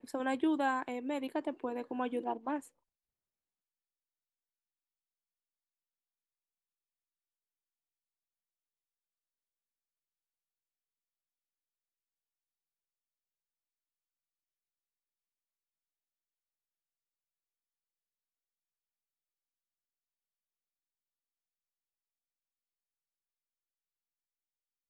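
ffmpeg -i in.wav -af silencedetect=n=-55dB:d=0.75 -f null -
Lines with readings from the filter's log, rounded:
silence_start: 2.69
silence_end: 24.89 | silence_duration: 22.20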